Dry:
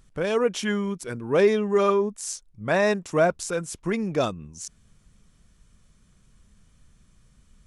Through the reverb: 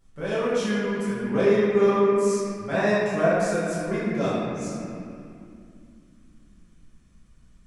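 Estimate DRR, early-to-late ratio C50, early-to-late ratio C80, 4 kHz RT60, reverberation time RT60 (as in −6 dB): −12.0 dB, −4.0 dB, −1.0 dB, 1.8 s, 2.5 s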